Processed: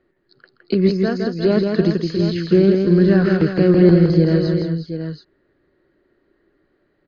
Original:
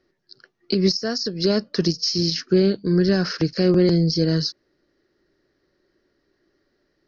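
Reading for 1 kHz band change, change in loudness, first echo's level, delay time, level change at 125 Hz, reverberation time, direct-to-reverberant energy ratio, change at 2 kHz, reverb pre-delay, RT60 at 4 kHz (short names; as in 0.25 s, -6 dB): +5.0 dB, +4.5 dB, -4.5 dB, 0.164 s, +6.0 dB, none, none, +4.0 dB, none, none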